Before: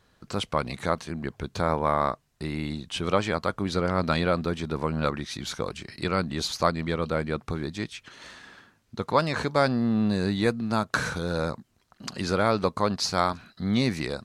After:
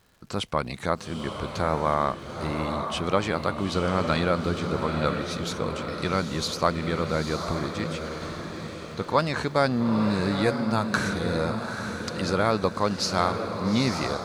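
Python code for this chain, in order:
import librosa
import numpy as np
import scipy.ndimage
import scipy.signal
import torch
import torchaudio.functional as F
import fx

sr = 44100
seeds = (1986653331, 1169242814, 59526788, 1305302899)

y = fx.dmg_crackle(x, sr, seeds[0], per_s=200.0, level_db=-49.0)
y = fx.echo_diffused(y, sr, ms=870, feedback_pct=47, wet_db=-6)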